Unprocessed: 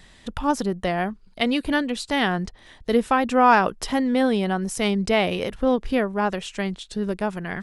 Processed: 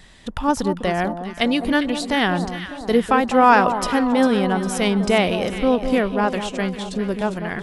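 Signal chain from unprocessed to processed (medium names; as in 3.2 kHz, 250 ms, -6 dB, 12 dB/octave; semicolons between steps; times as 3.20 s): echo whose repeats swap between lows and highs 201 ms, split 1.1 kHz, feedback 73%, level -8.5 dB; trim +2.5 dB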